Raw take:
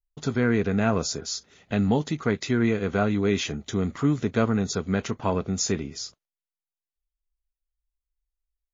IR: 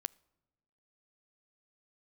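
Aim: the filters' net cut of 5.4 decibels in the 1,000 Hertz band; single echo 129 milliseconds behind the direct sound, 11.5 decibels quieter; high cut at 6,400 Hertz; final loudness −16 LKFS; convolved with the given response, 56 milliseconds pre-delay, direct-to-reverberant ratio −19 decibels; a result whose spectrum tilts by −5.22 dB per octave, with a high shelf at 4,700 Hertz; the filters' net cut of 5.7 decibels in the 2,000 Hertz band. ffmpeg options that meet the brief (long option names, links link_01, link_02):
-filter_complex "[0:a]lowpass=6400,equalizer=frequency=1000:width_type=o:gain=-6.5,equalizer=frequency=2000:width_type=o:gain=-6.5,highshelf=frequency=4700:gain=7.5,aecho=1:1:129:0.266,asplit=2[link_01][link_02];[1:a]atrim=start_sample=2205,adelay=56[link_03];[link_02][link_03]afir=irnorm=-1:irlink=0,volume=21dB[link_04];[link_01][link_04]amix=inputs=2:normalize=0,volume=-9dB"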